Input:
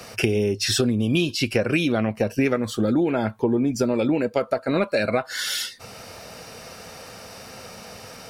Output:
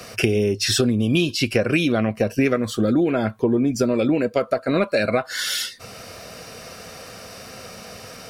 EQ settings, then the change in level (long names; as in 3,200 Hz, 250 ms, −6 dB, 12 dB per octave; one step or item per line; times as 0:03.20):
Butterworth band-reject 870 Hz, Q 6.4
+2.0 dB